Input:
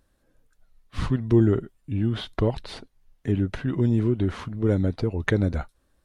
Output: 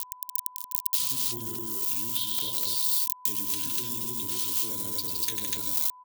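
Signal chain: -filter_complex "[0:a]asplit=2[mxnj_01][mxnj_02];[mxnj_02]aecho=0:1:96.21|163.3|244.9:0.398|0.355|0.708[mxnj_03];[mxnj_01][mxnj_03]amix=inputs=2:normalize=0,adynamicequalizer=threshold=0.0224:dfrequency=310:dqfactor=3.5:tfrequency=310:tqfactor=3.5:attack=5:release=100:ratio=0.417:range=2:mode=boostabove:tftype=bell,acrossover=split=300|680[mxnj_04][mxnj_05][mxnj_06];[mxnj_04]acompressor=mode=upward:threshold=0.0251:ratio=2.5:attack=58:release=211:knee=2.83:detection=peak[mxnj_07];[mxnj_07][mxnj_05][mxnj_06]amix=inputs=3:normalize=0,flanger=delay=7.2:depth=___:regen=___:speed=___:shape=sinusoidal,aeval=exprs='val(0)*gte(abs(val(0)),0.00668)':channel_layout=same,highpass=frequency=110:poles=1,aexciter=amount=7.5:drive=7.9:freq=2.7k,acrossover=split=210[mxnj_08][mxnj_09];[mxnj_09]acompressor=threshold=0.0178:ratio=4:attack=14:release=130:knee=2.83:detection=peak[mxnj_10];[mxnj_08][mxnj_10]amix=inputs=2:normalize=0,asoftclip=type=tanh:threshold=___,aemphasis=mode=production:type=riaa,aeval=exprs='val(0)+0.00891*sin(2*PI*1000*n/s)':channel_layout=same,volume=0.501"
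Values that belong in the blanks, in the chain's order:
8.2, -56, 1.4, 0.141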